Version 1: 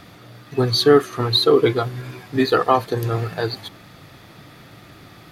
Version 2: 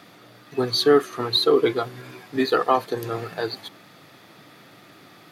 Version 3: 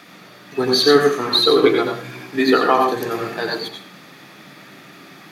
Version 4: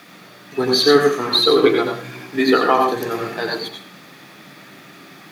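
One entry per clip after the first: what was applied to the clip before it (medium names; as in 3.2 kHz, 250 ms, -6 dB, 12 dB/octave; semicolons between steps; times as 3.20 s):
high-pass 200 Hz 12 dB/octave; trim -3 dB
reverberation RT60 0.40 s, pre-delay 82 ms, DRR 2 dB; trim +4.5 dB
word length cut 10-bit, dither triangular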